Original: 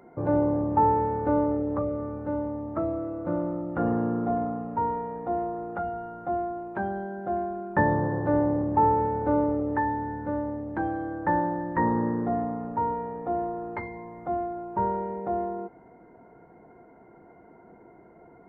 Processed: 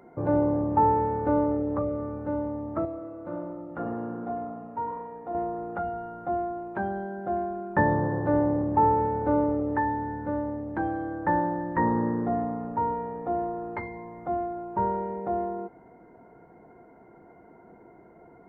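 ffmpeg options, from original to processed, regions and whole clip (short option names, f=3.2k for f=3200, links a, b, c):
-filter_complex "[0:a]asettb=1/sr,asplit=3[a][b][c];[a]atrim=end=2.854[d];[b]atrim=start=2.85:end=5.35,asetpts=PTS-STARTPTS,afade=t=in:d=0.004:c=qsin,afade=t=out:st=2.496:d=0.004:c=qsin,lowshelf=f=260:g=-6.5,flanger=delay=2.4:depth=6.5:regen=-74:speed=1.3:shape=sinusoidal[e];[c]atrim=start=5.346[f];[d][e]acrossfade=d=0.004:c1=hsin:c2=qsin[g];[g][f]acrossfade=d=0.004:c1=qsin:c2=hsin"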